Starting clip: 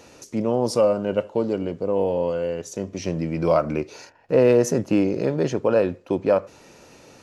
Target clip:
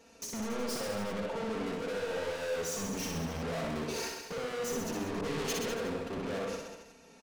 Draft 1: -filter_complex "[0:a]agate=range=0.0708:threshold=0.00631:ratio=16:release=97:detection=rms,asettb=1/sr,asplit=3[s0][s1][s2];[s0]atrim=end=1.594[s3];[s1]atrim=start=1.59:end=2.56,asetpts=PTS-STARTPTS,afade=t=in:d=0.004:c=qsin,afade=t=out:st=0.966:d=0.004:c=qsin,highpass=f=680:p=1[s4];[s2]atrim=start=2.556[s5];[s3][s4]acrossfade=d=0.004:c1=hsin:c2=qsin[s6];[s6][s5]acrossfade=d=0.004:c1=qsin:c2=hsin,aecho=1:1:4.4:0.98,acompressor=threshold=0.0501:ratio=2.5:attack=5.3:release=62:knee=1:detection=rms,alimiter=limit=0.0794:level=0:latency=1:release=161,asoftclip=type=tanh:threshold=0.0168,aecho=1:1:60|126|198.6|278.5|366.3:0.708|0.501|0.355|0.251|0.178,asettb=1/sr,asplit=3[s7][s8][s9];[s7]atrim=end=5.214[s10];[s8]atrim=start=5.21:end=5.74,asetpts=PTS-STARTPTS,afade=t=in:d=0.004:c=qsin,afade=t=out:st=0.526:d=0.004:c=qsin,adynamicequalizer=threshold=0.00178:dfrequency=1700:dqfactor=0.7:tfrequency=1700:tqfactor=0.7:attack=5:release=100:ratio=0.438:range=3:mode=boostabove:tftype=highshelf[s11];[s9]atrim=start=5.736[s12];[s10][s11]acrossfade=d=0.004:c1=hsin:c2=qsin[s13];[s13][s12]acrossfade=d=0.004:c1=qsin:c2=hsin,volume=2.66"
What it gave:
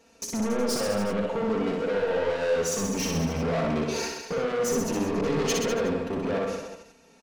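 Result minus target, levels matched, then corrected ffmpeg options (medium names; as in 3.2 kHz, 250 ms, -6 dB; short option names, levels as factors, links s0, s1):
saturation: distortion -4 dB
-filter_complex "[0:a]agate=range=0.0708:threshold=0.00631:ratio=16:release=97:detection=rms,asettb=1/sr,asplit=3[s0][s1][s2];[s0]atrim=end=1.594[s3];[s1]atrim=start=1.59:end=2.56,asetpts=PTS-STARTPTS,afade=t=in:d=0.004:c=qsin,afade=t=out:st=0.966:d=0.004:c=qsin,highpass=f=680:p=1[s4];[s2]atrim=start=2.556[s5];[s3][s4]acrossfade=d=0.004:c1=hsin:c2=qsin[s6];[s6][s5]acrossfade=d=0.004:c1=qsin:c2=hsin,aecho=1:1:4.4:0.98,acompressor=threshold=0.0501:ratio=2.5:attack=5.3:release=62:knee=1:detection=rms,alimiter=limit=0.0794:level=0:latency=1:release=161,asoftclip=type=tanh:threshold=0.00501,aecho=1:1:60|126|198.6|278.5|366.3:0.708|0.501|0.355|0.251|0.178,asettb=1/sr,asplit=3[s7][s8][s9];[s7]atrim=end=5.214[s10];[s8]atrim=start=5.21:end=5.74,asetpts=PTS-STARTPTS,afade=t=in:d=0.004:c=qsin,afade=t=out:st=0.526:d=0.004:c=qsin,adynamicequalizer=threshold=0.00178:dfrequency=1700:dqfactor=0.7:tfrequency=1700:tqfactor=0.7:attack=5:release=100:ratio=0.438:range=3:mode=boostabove:tftype=highshelf[s11];[s9]atrim=start=5.736[s12];[s10][s11]acrossfade=d=0.004:c1=hsin:c2=qsin[s13];[s13][s12]acrossfade=d=0.004:c1=qsin:c2=hsin,volume=2.66"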